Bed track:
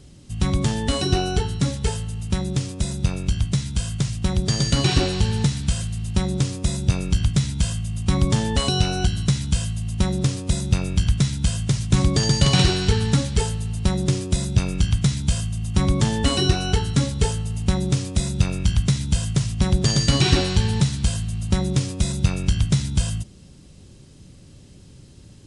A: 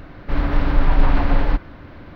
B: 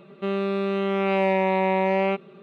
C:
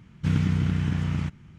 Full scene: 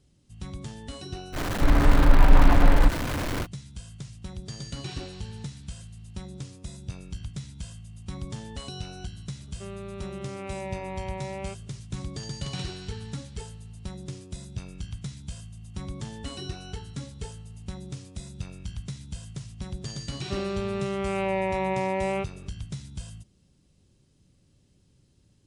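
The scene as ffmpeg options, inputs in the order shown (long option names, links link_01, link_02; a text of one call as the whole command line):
ffmpeg -i bed.wav -i cue0.wav -i cue1.wav -filter_complex "[2:a]asplit=2[link_01][link_02];[0:a]volume=-17dB[link_03];[1:a]aeval=exprs='val(0)+0.5*0.0631*sgn(val(0))':channel_layout=same,atrim=end=2.15,asetpts=PTS-STARTPTS,volume=-1dB,afade=type=in:duration=0.05,afade=type=out:start_time=2.1:duration=0.05,adelay=1320[link_04];[link_01]atrim=end=2.42,asetpts=PTS-STARTPTS,volume=-14.5dB,afade=type=in:duration=0.004:curve=hsin,afade=type=out:start_time=2.416:duration=0.004:curve=hsin,adelay=413658S[link_05];[link_02]atrim=end=2.42,asetpts=PTS-STARTPTS,volume=-5.5dB,afade=type=in:duration=0.004:curve=hsin,afade=type=out:start_time=2.416:duration=0.004:curve=hsin,adelay=20080[link_06];[link_03][link_04][link_05][link_06]amix=inputs=4:normalize=0" out.wav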